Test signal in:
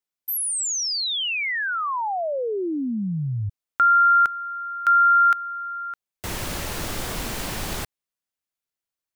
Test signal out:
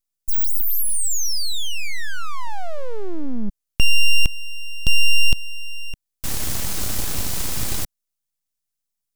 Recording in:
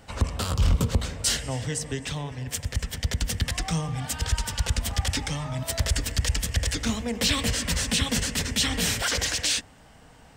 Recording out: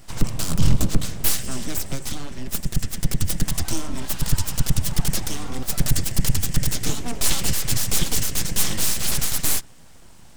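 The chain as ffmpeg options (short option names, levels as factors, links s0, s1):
-af "aeval=exprs='abs(val(0))':c=same,bass=f=250:g=9,treble=f=4000:g=9"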